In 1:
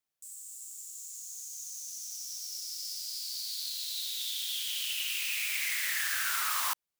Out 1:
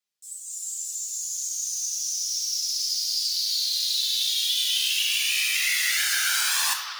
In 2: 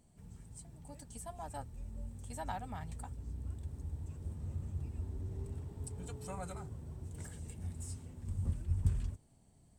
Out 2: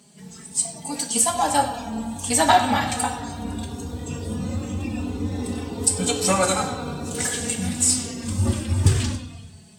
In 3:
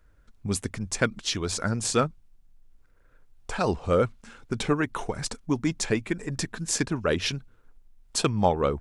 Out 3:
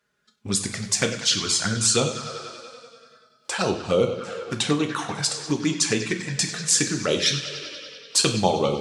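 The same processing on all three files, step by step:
high-pass filter 110 Hz 24 dB per octave
on a send: bucket-brigade delay 96 ms, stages 4,096, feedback 76%, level −13 dB
on the sum: flanger swept by the level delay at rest 4.9 ms, full sweep at −21 dBFS
parametric band 4,400 Hz +9.5 dB 2.3 octaves
coupled-rooms reverb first 0.45 s, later 2.2 s, from −19 dB, DRR 4.5 dB
in parallel at 0 dB: downward compressor, threshold −35 dBFS
on the sum: dynamic equaliser 8,400 Hz, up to +4 dB, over −42 dBFS, Q 1.7
noise reduction from a noise print of the clip's start 9 dB
loudness normalisation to −23 LKFS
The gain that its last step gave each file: +1.0, +19.0, −0.5 decibels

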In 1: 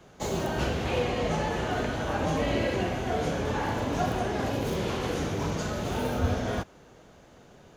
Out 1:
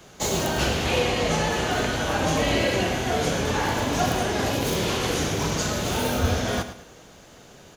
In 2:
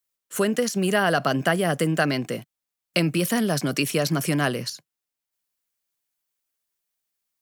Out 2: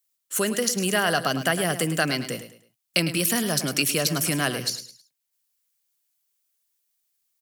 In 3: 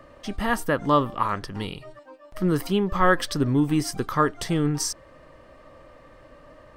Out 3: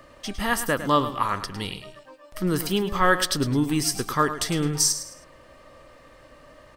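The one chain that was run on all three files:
high-shelf EQ 2,500 Hz +10.5 dB
on a send: repeating echo 106 ms, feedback 32%, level −11.5 dB
on the sum: loudness normalisation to −24 LKFS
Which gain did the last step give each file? +3.0, −3.5, −2.0 decibels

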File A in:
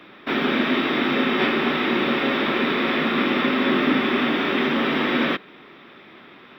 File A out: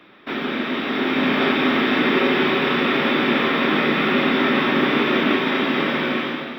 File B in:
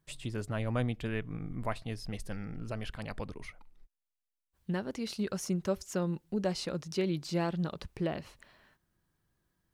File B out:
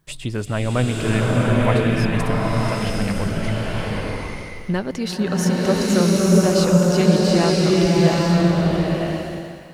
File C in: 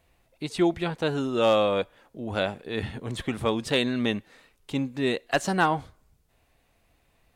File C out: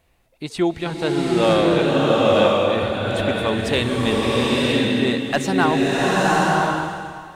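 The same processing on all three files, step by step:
slow-attack reverb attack 960 ms, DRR −5 dB
loudness normalisation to −19 LKFS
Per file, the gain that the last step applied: −3.5, +11.5, +2.5 decibels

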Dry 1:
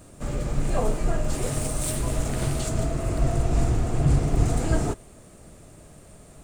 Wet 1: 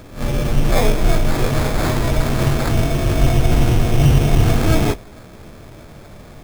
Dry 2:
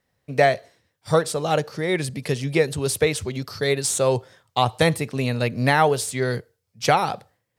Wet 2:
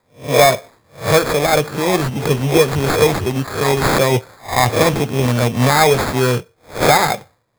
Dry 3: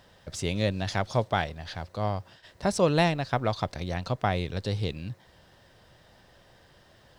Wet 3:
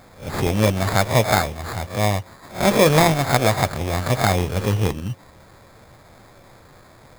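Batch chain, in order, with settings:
peak hold with a rise ahead of every peak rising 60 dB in 0.32 s
in parallel at 0 dB: brickwall limiter −12.5 dBFS
on the sum: hard clipping −5.5 dBFS
flanger 0.29 Hz, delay 8 ms, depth 1.5 ms, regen −60%
sample-rate reduction 2,900 Hz, jitter 0%
normalise the peak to −2 dBFS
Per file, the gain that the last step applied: +6.0, +6.0, +6.5 decibels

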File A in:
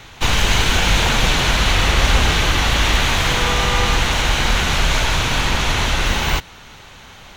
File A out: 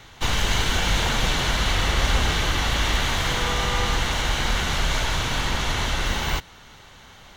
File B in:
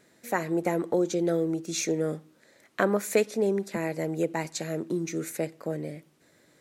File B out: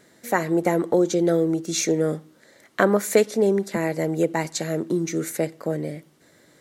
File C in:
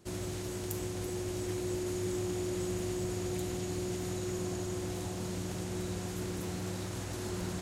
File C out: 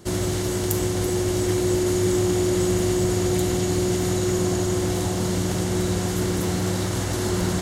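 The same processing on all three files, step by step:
notch filter 2,500 Hz, Q 12
loudness normalisation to −23 LKFS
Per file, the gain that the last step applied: −6.0, +6.0, +13.5 decibels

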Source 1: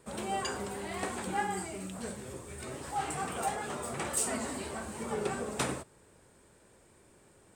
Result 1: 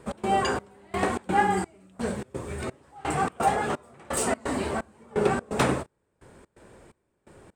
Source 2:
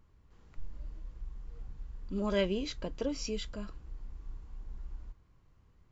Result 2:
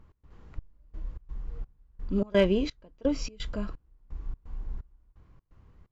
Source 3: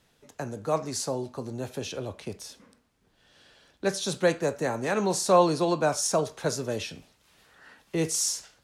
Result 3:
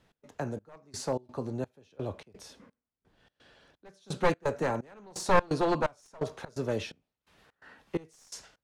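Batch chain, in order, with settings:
wavefolder on the positive side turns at −22.5 dBFS
high-shelf EQ 3,900 Hz −12 dB
gate pattern "x.xxx...x" 128 BPM −24 dB
normalise the peak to −9 dBFS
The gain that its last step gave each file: +11.0, +8.0, +0.5 decibels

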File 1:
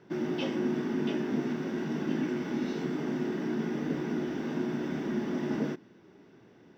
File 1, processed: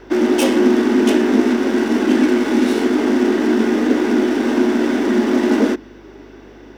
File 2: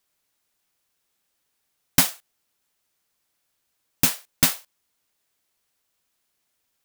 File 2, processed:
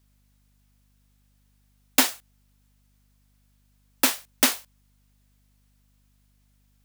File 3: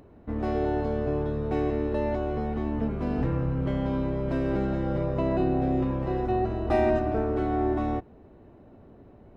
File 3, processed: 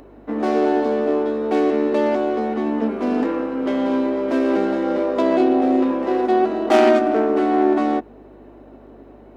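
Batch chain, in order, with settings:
stylus tracing distortion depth 0.19 ms
Butterworth high-pass 220 Hz 72 dB per octave
mains hum 50 Hz, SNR 32 dB
normalise the peak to −2 dBFS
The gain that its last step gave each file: +17.5, +1.5, +9.5 decibels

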